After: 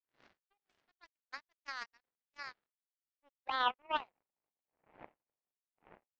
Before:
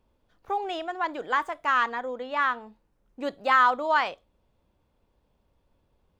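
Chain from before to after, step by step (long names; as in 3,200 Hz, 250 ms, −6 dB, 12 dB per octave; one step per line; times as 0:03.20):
wind on the microphone 360 Hz −26 dBFS
band-pass filter sweep 2,000 Hz → 860 Hz, 0:02.47–0:03.14
power curve on the samples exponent 3
level −1 dB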